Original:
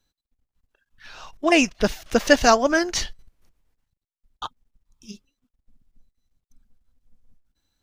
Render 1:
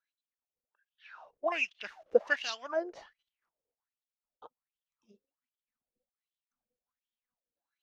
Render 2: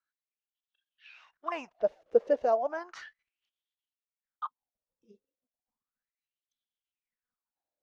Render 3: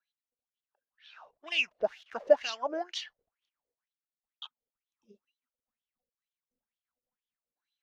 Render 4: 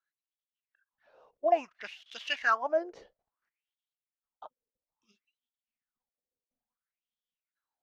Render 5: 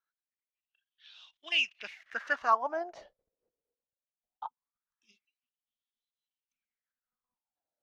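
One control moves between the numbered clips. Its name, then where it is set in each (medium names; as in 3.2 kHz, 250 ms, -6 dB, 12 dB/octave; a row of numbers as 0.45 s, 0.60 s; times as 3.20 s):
wah-wah, rate: 1.3 Hz, 0.34 Hz, 2.1 Hz, 0.59 Hz, 0.21 Hz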